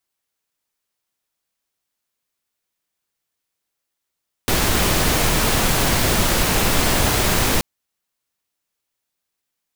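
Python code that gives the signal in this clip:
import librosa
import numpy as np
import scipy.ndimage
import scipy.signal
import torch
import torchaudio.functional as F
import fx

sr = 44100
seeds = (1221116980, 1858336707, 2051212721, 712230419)

y = fx.noise_colour(sr, seeds[0], length_s=3.13, colour='pink', level_db=-17.5)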